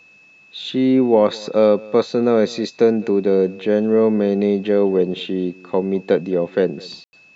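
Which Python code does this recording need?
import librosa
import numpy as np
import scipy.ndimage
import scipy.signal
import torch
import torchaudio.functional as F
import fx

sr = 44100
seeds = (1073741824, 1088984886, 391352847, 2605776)

y = fx.notch(x, sr, hz=2600.0, q=30.0)
y = fx.fix_ambience(y, sr, seeds[0], print_start_s=0.02, print_end_s=0.52, start_s=7.04, end_s=7.13)
y = fx.fix_echo_inverse(y, sr, delay_ms=209, level_db=-23.0)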